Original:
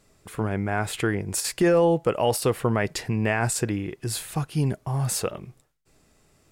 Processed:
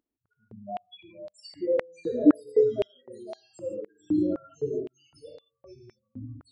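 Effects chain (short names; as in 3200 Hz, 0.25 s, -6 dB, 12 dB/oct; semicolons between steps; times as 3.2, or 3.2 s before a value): reverb removal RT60 1.4 s; tilt -3 dB/oct; loudest bins only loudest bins 2; non-linear reverb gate 0.18 s flat, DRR 0 dB; echoes that change speed 0.333 s, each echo -3 st, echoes 3; stepped high-pass 3.9 Hz 290–4300 Hz; gain -8 dB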